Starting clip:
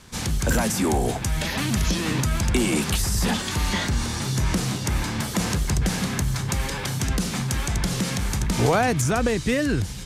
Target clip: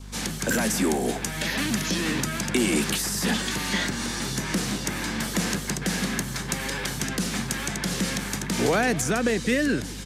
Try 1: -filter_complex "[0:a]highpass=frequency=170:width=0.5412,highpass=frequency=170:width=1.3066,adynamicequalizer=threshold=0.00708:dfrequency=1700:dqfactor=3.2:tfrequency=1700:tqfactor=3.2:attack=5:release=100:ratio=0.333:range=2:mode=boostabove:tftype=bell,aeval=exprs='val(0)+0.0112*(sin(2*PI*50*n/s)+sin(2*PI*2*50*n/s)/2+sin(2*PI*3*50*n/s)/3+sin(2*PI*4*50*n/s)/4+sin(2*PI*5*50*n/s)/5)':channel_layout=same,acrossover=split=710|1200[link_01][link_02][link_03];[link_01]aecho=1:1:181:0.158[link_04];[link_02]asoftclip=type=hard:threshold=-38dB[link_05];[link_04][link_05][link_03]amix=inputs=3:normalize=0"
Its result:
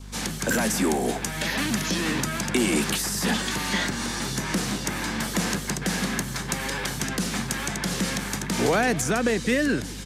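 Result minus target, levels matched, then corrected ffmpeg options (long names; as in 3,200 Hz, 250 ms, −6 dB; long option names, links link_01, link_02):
hard clipping: distortion −4 dB
-filter_complex "[0:a]highpass=frequency=170:width=0.5412,highpass=frequency=170:width=1.3066,adynamicequalizer=threshold=0.00708:dfrequency=1700:dqfactor=3.2:tfrequency=1700:tqfactor=3.2:attack=5:release=100:ratio=0.333:range=2:mode=boostabove:tftype=bell,aeval=exprs='val(0)+0.0112*(sin(2*PI*50*n/s)+sin(2*PI*2*50*n/s)/2+sin(2*PI*3*50*n/s)/3+sin(2*PI*4*50*n/s)/4+sin(2*PI*5*50*n/s)/5)':channel_layout=same,acrossover=split=710|1200[link_01][link_02][link_03];[link_01]aecho=1:1:181:0.158[link_04];[link_02]asoftclip=type=hard:threshold=-47.5dB[link_05];[link_04][link_05][link_03]amix=inputs=3:normalize=0"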